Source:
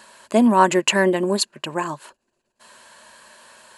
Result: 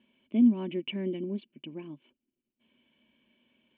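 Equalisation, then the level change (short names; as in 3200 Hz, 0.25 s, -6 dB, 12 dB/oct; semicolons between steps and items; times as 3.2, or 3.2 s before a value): vocal tract filter i; -2.0 dB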